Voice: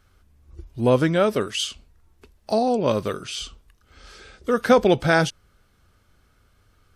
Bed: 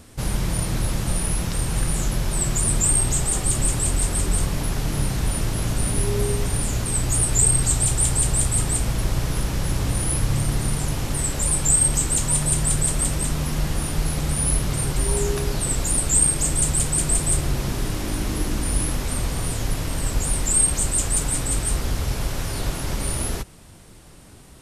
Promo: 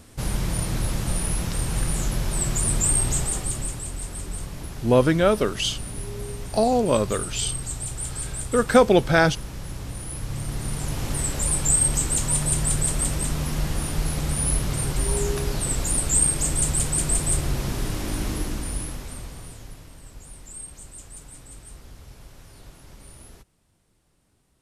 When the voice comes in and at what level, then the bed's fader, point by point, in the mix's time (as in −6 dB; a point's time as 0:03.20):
4.05 s, +0.5 dB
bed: 0:03.18 −2 dB
0:03.86 −11 dB
0:10.10 −11 dB
0:11.08 −2 dB
0:18.28 −2 dB
0:20.01 −20.5 dB